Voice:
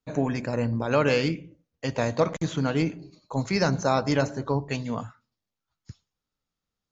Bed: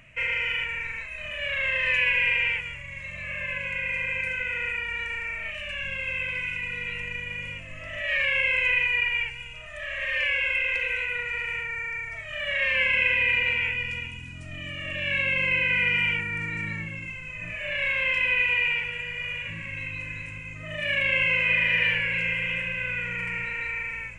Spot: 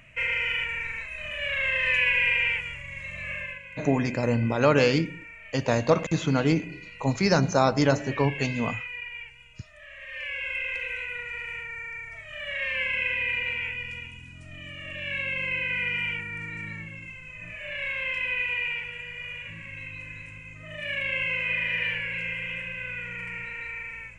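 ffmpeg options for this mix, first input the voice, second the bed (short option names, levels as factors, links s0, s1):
-filter_complex "[0:a]adelay=3700,volume=1.26[s0];[1:a]volume=2.37,afade=t=out:st=3.32:d=0.29:silence=0.237137,afade=t=in:st=10.07:d=0.53:silence=0.421697[s1];[s0][s1]amix=inputs=2:normalize=0"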